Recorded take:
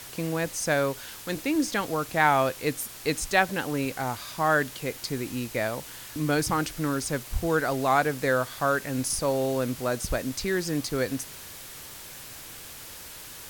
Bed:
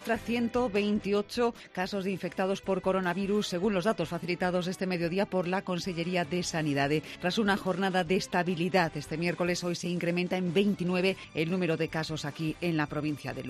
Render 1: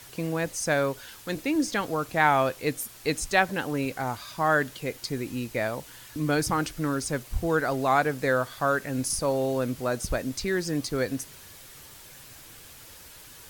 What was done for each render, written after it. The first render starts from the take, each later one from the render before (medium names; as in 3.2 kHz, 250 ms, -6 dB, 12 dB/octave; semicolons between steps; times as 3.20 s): noise reduction 6 dB, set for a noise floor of -43 dBFS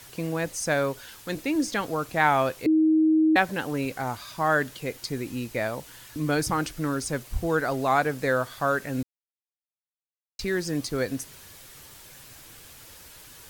2.66–3.36 s: bleep 315 Hz -16.5 dBFS; 9.03–10.39 s: mute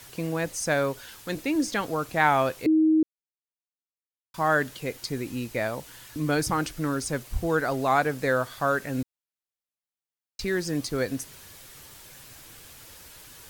3.03–4.34 s: mute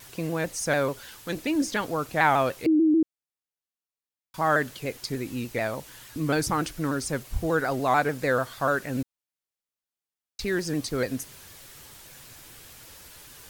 vibrato with a chosen wave saw down 6.8 Hz, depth 100 cents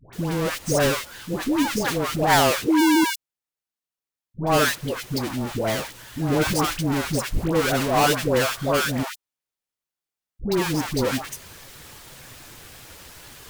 square wave that keeps the level; phase dispersion highs, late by 129 ms, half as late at 830 Hz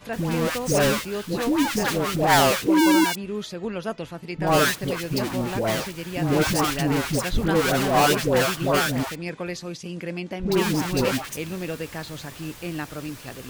add bed -2 dB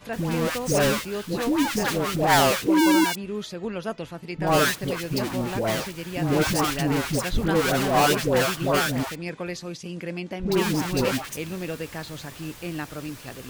trim -1 dB